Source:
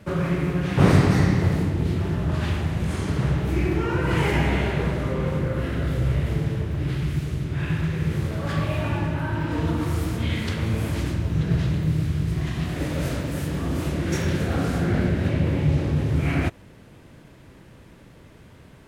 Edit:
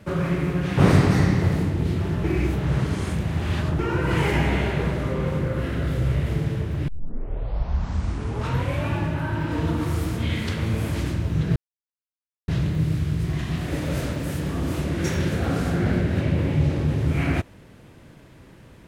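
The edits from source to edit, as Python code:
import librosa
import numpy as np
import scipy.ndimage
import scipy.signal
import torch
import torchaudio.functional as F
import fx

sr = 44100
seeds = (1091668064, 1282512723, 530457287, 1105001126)

y = fx.edit(x, sr, fx.reverse_span(start_s=2.24, length_s=1.55),
    fx.tape_start(start_s=6.88, length_s=2.02),
    fx.insert_silence(at_s=11.56, length_s=0.92), tone=tone)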